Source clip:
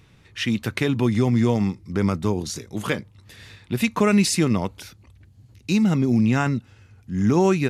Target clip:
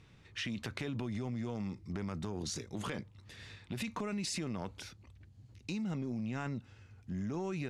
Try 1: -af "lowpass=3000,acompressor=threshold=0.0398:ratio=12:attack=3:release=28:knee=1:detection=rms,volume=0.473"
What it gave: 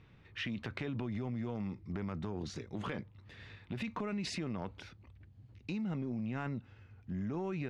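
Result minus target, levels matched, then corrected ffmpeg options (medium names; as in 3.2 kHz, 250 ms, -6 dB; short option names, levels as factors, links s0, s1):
8 kHz band -9.0 dB
-af "lowpass=8200,acompressor=threshold=0.0398:ratio=12:attack=3:release=28:knee=1:detection=rms,volume=0.473"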